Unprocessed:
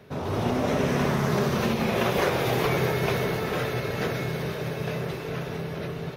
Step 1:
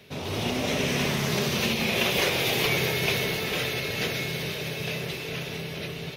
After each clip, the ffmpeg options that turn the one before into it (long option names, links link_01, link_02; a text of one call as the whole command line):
ffmpeg -i in.wav -af "highshelf=frequency=1900:width_type=q:width=1.5:gain=9.5,bandreject=frequency=60:width_type=h:width=6,bandreject=frequency=120:width_type=h:width=6,volume=-3dB" out.wav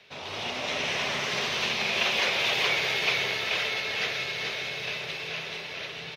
ffmpeg -i in.wav -filter_complex "[0:a]acrossover=split=590 6100:gain=0.178 1 0.1[link_01][link_02][link_03];[link_01][link_02][link_03]amix=inputs=3:normalize=0,aecho=1:1:429:0.631" out.wav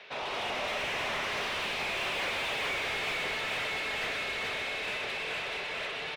ffmpeg -i in.wav -filter_complex "[0:a]bass=frequency=250:gain=-4,treble=frequency=4000:gain=-2,asplit=2[link_01][link_02];[link_02]highpass=frequency=720:poles=1,volume=26dB,asoftclip=type=tanh:threshold=-13.5dB[link_03];[link_01][link_03]amix=inputs=2:normalize=0,lowpass=frequency=1500:poles=1,volume=-6dB,volume=-8.5dB" out.wav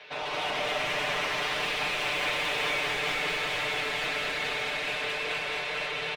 ffmpeg -i in.wav -filter_complex "[0:a]aecho=1:1:6.7:0.74,asplit=2[link_01][link_02];[link_02]aecho=0:1:214:0.668[link_03];[link_01][link_03]amix=inputs=2:normalize=0" out.wav